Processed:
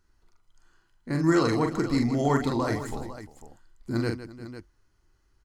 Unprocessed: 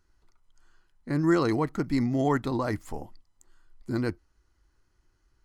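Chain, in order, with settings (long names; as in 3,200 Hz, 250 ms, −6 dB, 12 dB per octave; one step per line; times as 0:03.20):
dynamic equaliser 6,400 Hz, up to +6 dB, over −54 dBFS, Q 0.81
on a send: multi-tap delay 43/158/350/500 ms −5/−12.5/−17.5/−13 dB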